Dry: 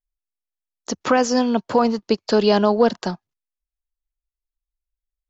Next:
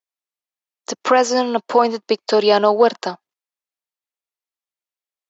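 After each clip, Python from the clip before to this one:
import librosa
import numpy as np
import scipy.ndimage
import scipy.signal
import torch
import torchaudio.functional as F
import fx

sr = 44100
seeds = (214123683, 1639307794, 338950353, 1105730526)

y = scipy.signal.sosfilt(scipy.signal.butter(2, 400.0, 'highpass', fs=sr, output='sos'), x)
y = fx.high_shelf(y, sr, hz=6000.0, db=-6.0)
y = fx.notch(y, sr, hz=1500.0, q=21.0)
y = y * 10.0 ** (5.0 / 20.0)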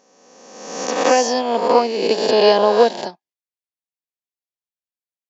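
y = fx.spec_swells(x, sr, rise_s=1.71)
y = fx.peak_eq(y, sr, hz=1300.0, db=-13.0, octaves=0.41)
y = fx.upward_expand(y, sr, threshold_db=-30.0, expansion=1.5)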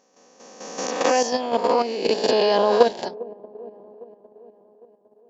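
y = fx.echo_wet_lowpass(x, sr, ms=404, feedback_pct=61, hz=520.0, wet_db=-16.5)
y = fx.level_steps(y, sr, step_db=9)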